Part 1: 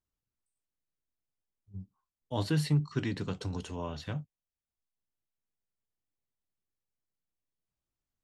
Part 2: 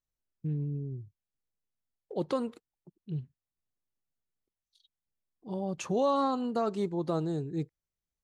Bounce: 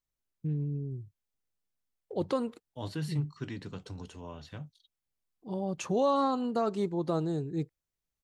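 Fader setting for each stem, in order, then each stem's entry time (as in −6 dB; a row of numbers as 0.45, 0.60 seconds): −6.5, +0.5 decibels; 0.45, 0.00 seconds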